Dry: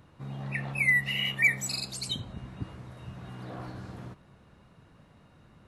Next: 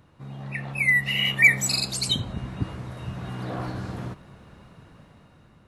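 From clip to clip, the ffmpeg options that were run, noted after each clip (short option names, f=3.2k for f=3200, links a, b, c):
-af "dynaudnorm=f=330:g=7:m=9dB"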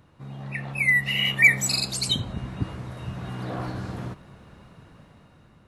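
-af anull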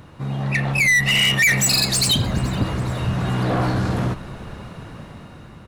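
-filter_complex "[0:a]asplit=2[a][b];[b]alimiter=limit=-18.5dB:level=0:latency=1:release=200,volume=-1.5dB[c];[a][c]amix=inputs=2:normalize=0,asoftclip=type=tanh:threshold=-21.5dB,asplit=5[d][e][f][g][h];[e]adelay=419,afreqshift=-120,volume=-21dB[i];[f]adelay=838,afreqshift=-240,volume=-27dB[j];[g]adelay=1257,afreqshift=-360,volume=-33dB[k];[h]adelay=1676,afreqshift=-480,volume=-39.1dB[l];[d][i][j][k][l]amix=inputs=5:normalize=0,volume=8dB"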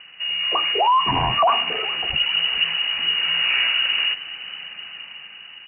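-af "lowpass=f=2.6k:t=q:w=0.5098,lowpass=f=2.6k:t=q:w=0.6013,lowpass=f=2.6k:t=q:w=0.9,lowpass=f=2.6k:t=q:w=2.563,afreqshift=-3000"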